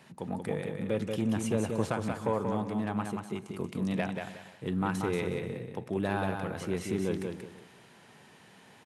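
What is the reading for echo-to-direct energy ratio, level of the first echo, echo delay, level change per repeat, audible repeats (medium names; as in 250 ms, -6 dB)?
-4.5 dB, -5.0 dB, 183 ms, no regular repeats, 5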